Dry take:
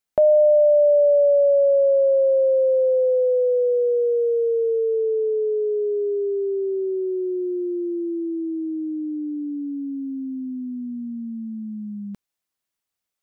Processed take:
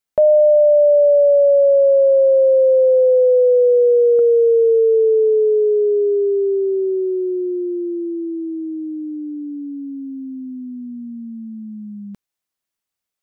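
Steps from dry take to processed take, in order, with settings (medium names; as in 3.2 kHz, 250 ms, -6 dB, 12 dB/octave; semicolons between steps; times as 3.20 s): dynamic bell 450 Hz, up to +8 dB, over -34 dBFS, Q 2; 4.19–6.57 s: upward compressor, threshold -17 dBFS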